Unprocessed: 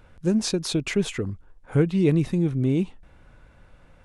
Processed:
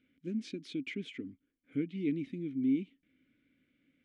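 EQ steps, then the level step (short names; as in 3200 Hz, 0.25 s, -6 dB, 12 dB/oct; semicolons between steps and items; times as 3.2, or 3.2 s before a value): vowel filter i; low shelf 70 Hz -7 dB; -1.5 dB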